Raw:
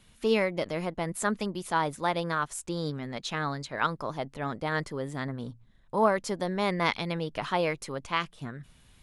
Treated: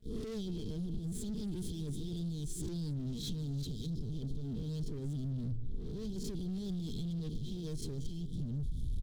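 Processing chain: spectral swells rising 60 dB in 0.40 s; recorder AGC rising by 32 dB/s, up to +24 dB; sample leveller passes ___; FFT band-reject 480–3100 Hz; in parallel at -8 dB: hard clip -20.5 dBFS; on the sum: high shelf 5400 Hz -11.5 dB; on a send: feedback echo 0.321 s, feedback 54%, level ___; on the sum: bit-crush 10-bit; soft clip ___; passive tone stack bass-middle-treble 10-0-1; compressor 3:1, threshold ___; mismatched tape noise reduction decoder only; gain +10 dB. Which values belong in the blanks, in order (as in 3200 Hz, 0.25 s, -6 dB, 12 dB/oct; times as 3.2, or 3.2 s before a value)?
5, -18.5 dB, -18 dBFS, -49 dBFS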